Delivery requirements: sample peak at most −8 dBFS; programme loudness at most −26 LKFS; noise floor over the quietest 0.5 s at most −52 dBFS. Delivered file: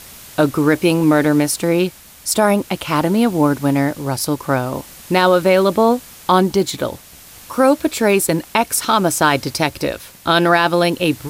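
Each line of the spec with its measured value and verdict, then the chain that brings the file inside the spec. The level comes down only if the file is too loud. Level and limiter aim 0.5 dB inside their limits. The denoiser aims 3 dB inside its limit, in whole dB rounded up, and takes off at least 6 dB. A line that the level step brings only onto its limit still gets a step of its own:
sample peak −2.5 dBFS: out of spec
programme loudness −16.5 LKFS: out of spec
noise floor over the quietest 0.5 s −41 dBFS: out of spec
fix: broadband denoise 6 dB, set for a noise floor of −41 dBFS
level −10 dB

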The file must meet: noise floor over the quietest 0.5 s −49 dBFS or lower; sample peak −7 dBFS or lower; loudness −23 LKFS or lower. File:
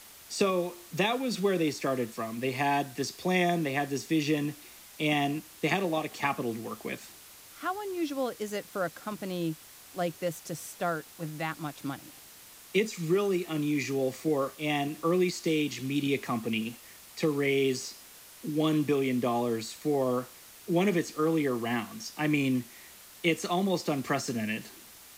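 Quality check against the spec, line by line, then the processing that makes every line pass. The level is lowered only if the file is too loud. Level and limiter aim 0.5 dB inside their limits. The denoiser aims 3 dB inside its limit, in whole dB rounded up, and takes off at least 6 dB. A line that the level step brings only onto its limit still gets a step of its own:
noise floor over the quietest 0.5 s −51 dBFS: in spec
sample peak −13.5 dBFS: in spec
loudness −30.5 LKFS: in spec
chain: no processing needed

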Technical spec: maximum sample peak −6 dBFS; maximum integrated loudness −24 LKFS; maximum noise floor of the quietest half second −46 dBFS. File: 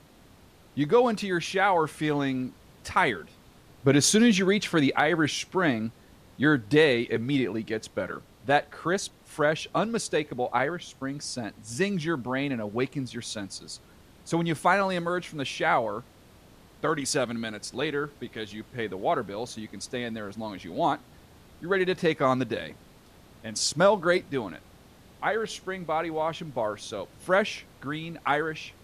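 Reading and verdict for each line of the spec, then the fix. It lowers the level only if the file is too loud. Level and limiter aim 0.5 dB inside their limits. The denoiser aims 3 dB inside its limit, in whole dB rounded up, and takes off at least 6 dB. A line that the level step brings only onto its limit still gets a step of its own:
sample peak −9.5 dBFS: in spec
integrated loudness −27.5 LKFS: in spec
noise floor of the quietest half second −54 dBFS: in spec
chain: no processing needed

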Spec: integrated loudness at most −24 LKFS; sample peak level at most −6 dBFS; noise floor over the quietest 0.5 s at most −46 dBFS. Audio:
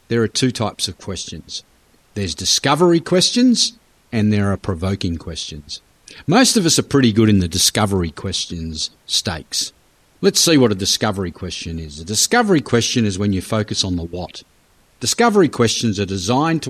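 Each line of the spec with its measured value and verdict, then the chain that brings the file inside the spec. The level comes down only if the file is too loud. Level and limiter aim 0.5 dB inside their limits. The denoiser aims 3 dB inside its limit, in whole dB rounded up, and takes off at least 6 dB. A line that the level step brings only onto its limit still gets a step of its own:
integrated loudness −17.0 LKFS: out of spec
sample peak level −2.5 dBFS: out of spec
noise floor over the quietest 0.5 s −55 dBFS: in spec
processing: level −7.5 dB

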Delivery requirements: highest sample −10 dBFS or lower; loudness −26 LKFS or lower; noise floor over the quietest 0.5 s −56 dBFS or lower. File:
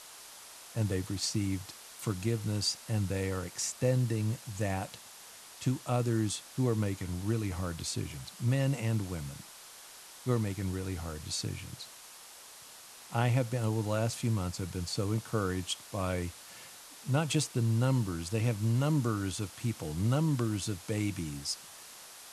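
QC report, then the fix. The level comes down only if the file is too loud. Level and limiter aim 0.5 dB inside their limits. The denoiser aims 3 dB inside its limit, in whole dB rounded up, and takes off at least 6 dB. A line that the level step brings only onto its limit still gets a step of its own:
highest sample −14.0 dBFS: in spec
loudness −33.0 LKFS: in spec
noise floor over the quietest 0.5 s −51 dBFS: out of spec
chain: broadband denoise 8 dB, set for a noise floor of −51 dBFS

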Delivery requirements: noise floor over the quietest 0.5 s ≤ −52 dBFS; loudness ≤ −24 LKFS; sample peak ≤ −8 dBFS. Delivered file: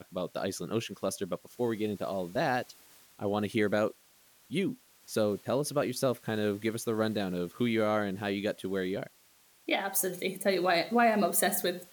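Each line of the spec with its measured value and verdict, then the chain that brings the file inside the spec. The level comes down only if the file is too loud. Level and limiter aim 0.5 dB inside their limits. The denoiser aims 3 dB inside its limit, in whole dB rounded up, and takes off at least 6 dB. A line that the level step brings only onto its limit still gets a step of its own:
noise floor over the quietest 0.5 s −63 dBFS: in spec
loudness −31.0 LKFS: in spec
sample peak −15.0 dBFS: in spec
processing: no processing needed

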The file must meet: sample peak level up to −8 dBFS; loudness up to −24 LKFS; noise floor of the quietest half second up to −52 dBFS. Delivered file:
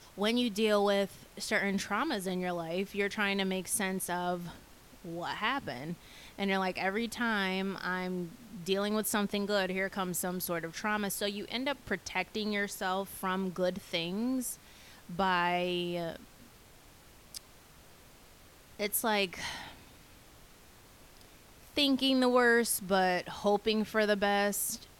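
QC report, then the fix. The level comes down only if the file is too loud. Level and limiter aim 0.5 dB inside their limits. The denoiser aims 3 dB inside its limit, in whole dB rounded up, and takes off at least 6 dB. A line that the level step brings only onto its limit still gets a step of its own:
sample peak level −14.5 dBFS: in spec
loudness −32.0 LKFS: in spec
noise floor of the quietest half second −57 dBFS: in spec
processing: no processing needed

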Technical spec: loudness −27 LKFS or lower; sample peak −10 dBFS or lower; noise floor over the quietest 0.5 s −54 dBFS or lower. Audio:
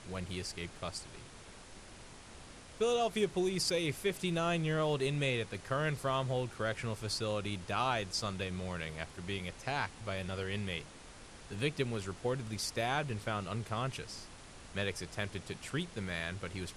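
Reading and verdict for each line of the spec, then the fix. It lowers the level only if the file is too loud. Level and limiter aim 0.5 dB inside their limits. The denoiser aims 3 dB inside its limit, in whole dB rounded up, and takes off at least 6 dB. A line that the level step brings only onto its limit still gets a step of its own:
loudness −36.0 LKFS: in spec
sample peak −19.0 dBFS: in spec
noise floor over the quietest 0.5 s −52 dBFS: out of spec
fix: broadband denoise 6 dB, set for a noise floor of −52 dBFS

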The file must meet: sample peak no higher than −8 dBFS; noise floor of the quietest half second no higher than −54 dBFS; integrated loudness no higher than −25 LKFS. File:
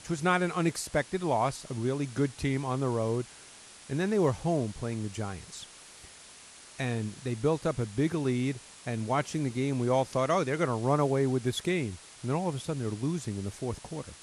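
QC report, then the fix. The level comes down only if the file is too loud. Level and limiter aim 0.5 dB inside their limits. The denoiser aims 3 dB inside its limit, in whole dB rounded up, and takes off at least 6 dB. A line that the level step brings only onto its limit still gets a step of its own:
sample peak −13.0 dBFS: in spec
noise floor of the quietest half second −51 dBFS: out of spec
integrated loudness −30.5 LKFS: in spec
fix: broadband denoise 6 dB, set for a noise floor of −51 dBFS

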